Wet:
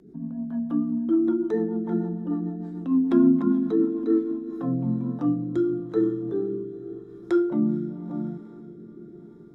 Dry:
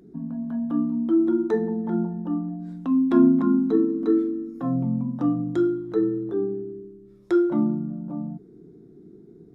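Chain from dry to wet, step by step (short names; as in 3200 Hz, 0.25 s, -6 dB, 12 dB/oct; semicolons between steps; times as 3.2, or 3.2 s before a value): diffused feedback echo 0.463 s, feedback 61%, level -15 dB; rotary speaker horn 6.7 Hz, later 0.9 Hz, at 4.03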